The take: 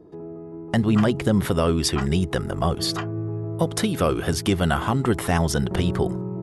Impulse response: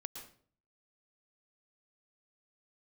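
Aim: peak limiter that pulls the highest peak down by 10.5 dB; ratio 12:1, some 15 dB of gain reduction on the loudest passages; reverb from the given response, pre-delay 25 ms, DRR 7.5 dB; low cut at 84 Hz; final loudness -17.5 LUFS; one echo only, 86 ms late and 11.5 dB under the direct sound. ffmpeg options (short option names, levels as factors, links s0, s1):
-filter_complex "[0:a]highpass=84,acompressor=threshold=0.0282:ratio=12,alimiter=level_in=1.06:limit=0.0631:level=0:latency=1,volume=0.944,aecho=1:1:86:0.266,asplit=2[s0][s1];[1:a]atrim=start_sample=2205,adelay=25[s2];[s1][s2]afir=irnorm=-1:irlink=0,volume=0.596[s3];[s0][s3]amix=inputs=2:normalize=0,volume=7.94"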